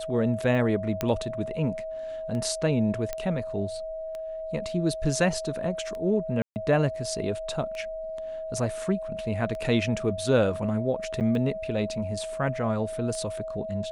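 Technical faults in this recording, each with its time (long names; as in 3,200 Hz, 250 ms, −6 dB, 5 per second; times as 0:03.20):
scratch tick 33 1/3 rpm −24 dBFS
whistle 640 Hz −32 dBFS
0:01.01: click −12 dBFS
0:03.13: click −16 dBFS
0:06.42–0:06.56: drop-out 139 ms
0:11.20–0:11.21: drop-out 8.9 ms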